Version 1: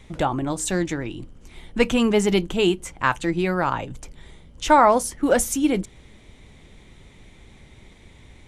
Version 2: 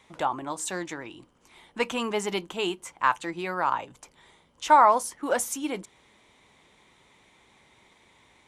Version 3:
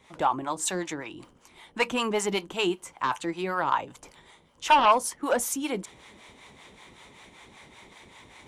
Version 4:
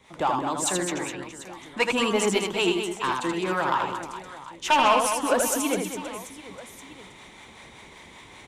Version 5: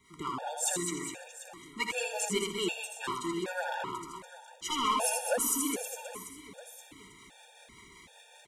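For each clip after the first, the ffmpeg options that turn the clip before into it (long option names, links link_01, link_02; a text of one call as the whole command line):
ffmpeg -i in.wav -af "highpass=frequency=530:poles=1,equalizer=frequency=1000:width_type=o:width=0.67:gain=7.5,volume=-5.5dB" out.wav
ffmpeg -i in.wav -filter_complex "[0:a]aeval=exprs='0.473*sin(PI/2*2*val(0)/0.473)':channel_layout=same,acrossover=split=540[link_01][link_02];[link_01]aeval=exprs='val(0)*(1-0.7/2+0.7/2*cos(2*PI*5.2*n/s))':channel_layout=same[link_03];[link_02]aeval=exprs='val(0)*(1-0.7/2-0.7/2*cos(2*PI*5.2*n/s))':channel_layout=same[link_04];[link_03][link_04]amix=inputs=2:normalize=0,areverse,acompressor=mode=upward:threshold=-38dB:ratio=2.5,areverse,volume=-4.5dB" out.wav
ffmpeg -i in.wav -filter_complex "[0:a]acrossover=split=780|1300[link_01][link_02][link_03];[link_02]asoftclip=type=tanh:threshold=-33.5dB[link_04];[link_01][link_04][link_03]amix=inputs=3:normalize=0,aecho=1:1:80|208|412.8|740.5|1265:0.631|0.398|0.251|0.158|0.1,volume=2dB" out.wav
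ffmpeg -i in.wav -af "crystalizer=i=1.5:c=0,aecho=1:1:62|124|186|248|310|372:0.251|0.141|0.0788|0.0441|0.0247|0.0138,afftfilt=real='re*gt(sin(2*PI*1.3*pts/sr)*(1-2*mod(floor(b*sr/1024/470),2)),0)':imag='im*gt(sin(2*PI*1.3*pts/sr)*(1-2*mod(floor(b*sr/1024/470),2)),0)':win_size=1024:overlap=0.75,volume=-7dB" out.wav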